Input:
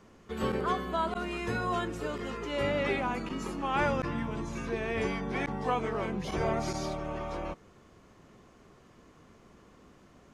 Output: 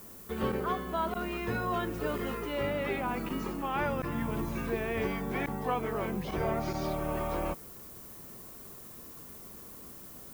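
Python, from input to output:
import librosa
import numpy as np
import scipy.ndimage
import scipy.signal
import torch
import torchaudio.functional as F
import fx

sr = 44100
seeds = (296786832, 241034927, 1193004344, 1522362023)

y = fx.air_absorb(x, sr, metres=130.0)
y = fx.dmg_noise_colour(y, sr, seeds[0], colour='violet', level_db=-53.0)
y = fx.rider(y, sr, range_db=4, speed_s=0.5)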